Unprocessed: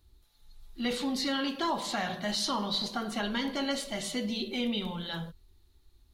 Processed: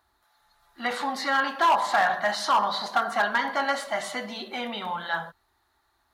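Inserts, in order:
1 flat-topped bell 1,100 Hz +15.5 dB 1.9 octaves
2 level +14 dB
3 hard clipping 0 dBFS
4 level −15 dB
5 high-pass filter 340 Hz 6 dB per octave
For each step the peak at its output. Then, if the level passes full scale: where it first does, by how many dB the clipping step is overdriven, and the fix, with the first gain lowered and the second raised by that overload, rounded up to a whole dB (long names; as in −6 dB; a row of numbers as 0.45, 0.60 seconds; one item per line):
−6.5, +7.5, 0.0, −15.0, −12.5 dBFS
step 2, 7.5 dB
step 2 +6 dB, step 4 −7 dB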